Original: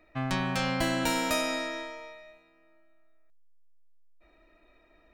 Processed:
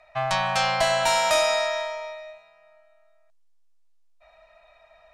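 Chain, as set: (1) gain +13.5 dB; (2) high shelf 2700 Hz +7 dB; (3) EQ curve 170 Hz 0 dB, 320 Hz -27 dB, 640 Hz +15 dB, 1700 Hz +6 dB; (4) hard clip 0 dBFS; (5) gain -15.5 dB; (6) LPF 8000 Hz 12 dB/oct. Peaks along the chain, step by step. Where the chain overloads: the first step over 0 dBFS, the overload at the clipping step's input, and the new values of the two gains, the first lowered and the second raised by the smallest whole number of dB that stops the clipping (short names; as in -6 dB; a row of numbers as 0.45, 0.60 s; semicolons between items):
-2.0, +2.5, +9.5, 0.0, -15.5, -14.5 dBFS; step 2, 9.5 dB; step 1 +3.5 dB, step 5 -5.5 dB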